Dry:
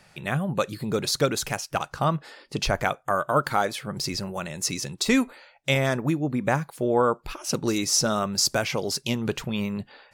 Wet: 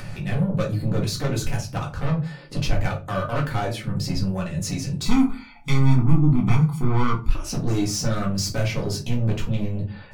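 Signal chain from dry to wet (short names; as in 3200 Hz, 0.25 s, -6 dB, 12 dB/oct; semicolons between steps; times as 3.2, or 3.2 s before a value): tone controls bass +12 dB, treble -3 dB; upward compressor, threshold -26 dBFS; soft clip -21.5 dBFS, distortion -7 dB; 5.05–7.28 comb 0.9 ms, depth 95%; reverb RT60 0.30 s, pre-delay 4 ms, DRR -3 dB; gain -4 dB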